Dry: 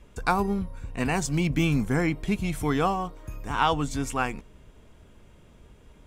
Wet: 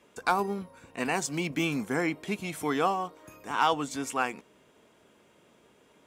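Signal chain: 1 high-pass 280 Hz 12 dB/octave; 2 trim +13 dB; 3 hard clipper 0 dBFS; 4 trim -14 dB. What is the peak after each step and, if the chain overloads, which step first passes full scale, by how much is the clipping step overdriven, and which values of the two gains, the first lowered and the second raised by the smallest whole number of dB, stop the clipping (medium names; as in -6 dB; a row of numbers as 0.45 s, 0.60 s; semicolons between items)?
-9.0 dBFS, +4.0 dBFS, 0.0 dBFS, -14.0 dBFS; step 2, 4.0 dB; step 2 +9 dB, step 4 -10 dB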